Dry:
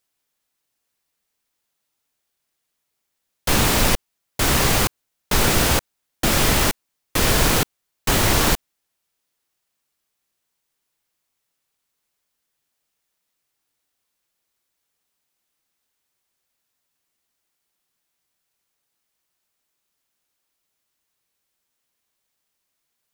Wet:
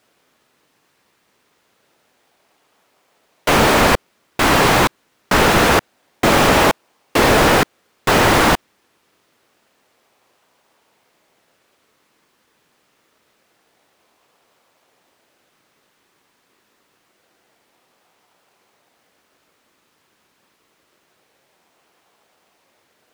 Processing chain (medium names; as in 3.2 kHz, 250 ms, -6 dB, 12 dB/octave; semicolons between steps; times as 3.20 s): self-modulated delay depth 0.42 ms; in parallel at -7.5 dB: decimation with a swept rate 40×, swing 100% 0.26 Hz; on the sum: overdrive pedal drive 31 dB, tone 1.3 kHz, clips at -0.5 dBFS